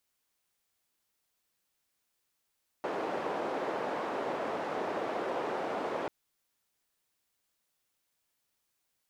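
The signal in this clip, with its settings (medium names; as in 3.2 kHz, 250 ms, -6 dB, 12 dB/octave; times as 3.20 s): noise band 400–640 Hz, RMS -34.5 dBFS 3.24 s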